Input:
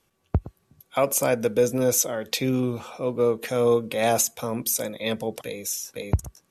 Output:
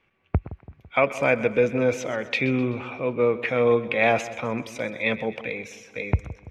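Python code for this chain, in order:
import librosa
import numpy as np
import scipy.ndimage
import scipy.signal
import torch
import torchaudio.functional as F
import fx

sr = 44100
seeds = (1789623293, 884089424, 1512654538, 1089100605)

y = fx.lowpass_res(x, sr, hz=2300.0, q=3.5)
y = fx.echo_split(y, sr, split_hz=1000.0, low_ms=167, high_ms=128, feedback_pct=52, wet_db=-15.5)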